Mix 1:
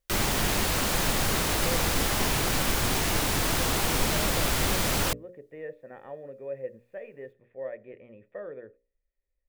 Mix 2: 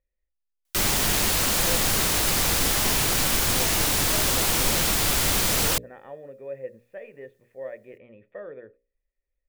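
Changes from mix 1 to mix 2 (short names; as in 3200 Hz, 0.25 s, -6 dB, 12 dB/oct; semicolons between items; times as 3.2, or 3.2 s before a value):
background: entry +0.65 s; master: add high shelf 3000 Hz +7.5 dB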